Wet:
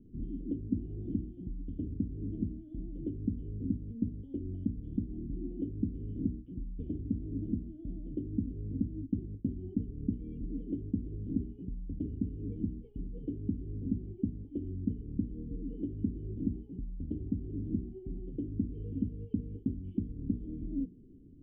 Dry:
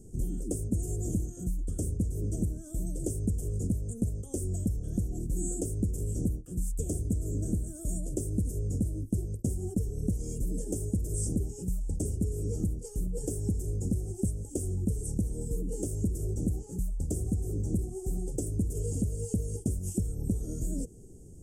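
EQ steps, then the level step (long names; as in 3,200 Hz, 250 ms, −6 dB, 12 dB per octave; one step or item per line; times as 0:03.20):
formant resonators in series i
mains-hum notches 60/120/180/240/300/360/420 Hz
+5.0 dB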